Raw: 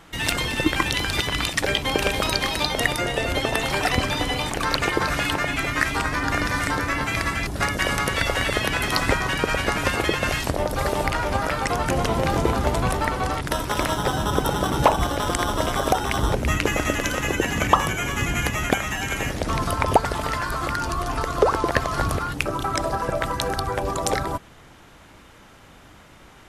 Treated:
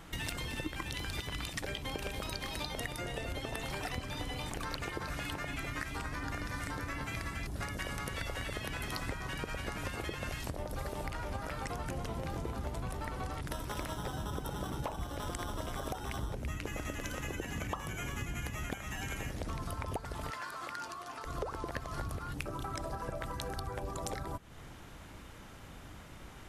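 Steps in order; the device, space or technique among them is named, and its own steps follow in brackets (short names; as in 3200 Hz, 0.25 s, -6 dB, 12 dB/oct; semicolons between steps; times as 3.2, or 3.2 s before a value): ASMR close-microphone chain (low shelf 200 Hz +7 dB; compressor 5:1, threshold -32 dBFS, peak gain reduction 19.5 dB; high shelf 10000 Hz +5.5 dB); 20.3–21.25 weighting filter A; gain -5 dB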